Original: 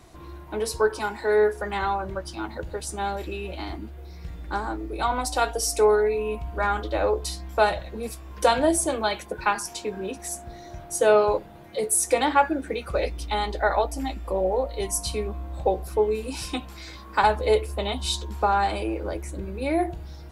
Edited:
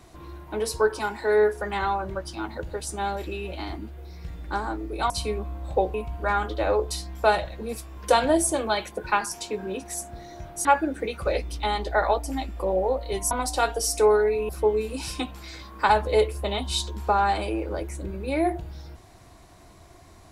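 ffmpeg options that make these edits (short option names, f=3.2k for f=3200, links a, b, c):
-filter_complex "[0:a]asplit=6[a][b][c][d][e][f];[a]atrim=end=5.102[g];[b]atrim=start=14.988:end=15.832[h];[c]atrim=start=6.278:end=10.992[i];[d]atrim=start=12.328:end=14.992[j];[e]atrim=start=5.098:end=6.282[k];[f]atrim=start=15.828[l];[g][h]acrossfade=d=0.004:c1=hsin:c2=hsin[m];[m][i]acrossfade=d=0.004:c1=hsin:c2=hsin[n];[n][j]acrossfade=d=0.004:c1=hsin:c2=hsin[o];[o][k]acrossfade=d=0.004:c1=hsin:c2=hsin[p];[p][l]acrossfade=d=0.004:c1=hsin:c2=hsin"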